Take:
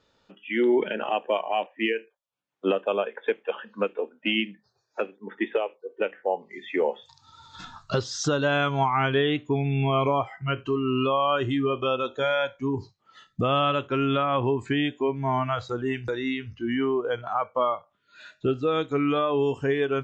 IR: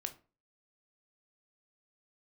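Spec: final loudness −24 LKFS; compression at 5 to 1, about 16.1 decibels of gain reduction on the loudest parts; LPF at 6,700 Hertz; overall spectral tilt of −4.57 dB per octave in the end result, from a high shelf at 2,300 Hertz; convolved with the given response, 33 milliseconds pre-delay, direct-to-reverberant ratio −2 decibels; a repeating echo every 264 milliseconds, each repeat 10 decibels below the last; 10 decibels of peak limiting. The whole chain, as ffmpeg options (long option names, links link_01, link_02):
-filter_complex "[0:a]lowpass=6700,highshelf=frequency=2300:gain=-3,acompressor=threshold=-38dB:ratio=5,alimiter=level_in=9.5dB:limit=-24dB:level=0:latency=1,volume=-9.5dB,aecho=1:1:264|528|792|1056:0.316|0.101|0.0324|0.0104,asplit=2[link_01][link_02];[1:a]atrim=start_sample=2205,adelay=33[link_03];[link_02][link_03]afir=irnorm=-1:irlink=0,volume=3.5dB[link_04];[link_01][link_04]amix=inputs=2:normalize=0,volume=15dB"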